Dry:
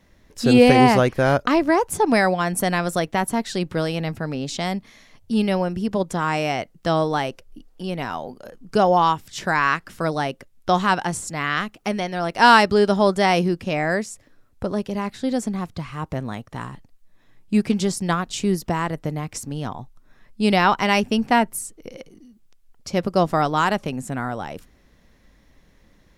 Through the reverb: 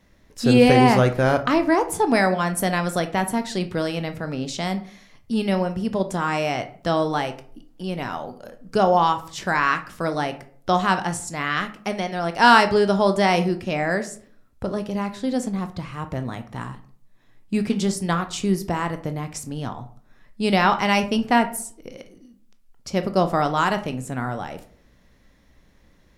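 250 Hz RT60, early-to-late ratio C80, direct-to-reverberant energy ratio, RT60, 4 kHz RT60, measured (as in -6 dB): 0.60 s, 18.5 dB, 8.5 dB, 0.50 s, 0.30 s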